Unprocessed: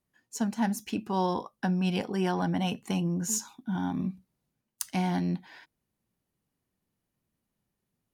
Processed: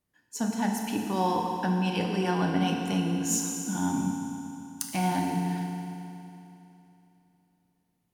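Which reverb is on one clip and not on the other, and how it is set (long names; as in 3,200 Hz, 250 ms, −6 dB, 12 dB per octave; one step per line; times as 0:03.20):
feedback delay network reverb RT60 3 s, high-frequency decay 0.95×, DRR 0.5 dB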